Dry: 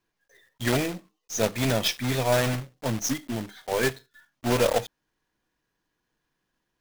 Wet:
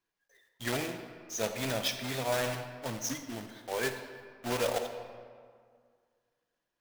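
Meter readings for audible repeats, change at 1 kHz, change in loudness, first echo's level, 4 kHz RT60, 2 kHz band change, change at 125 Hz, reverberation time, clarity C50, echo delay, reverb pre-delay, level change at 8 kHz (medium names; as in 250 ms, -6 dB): no echo, -6.5 dB, -8.0 dB, no echo, 1.2 s, -6.0 dB, -12.0 dB, 2.0 s, 7.5 dB, no echo, 38 ms, -6.0 dB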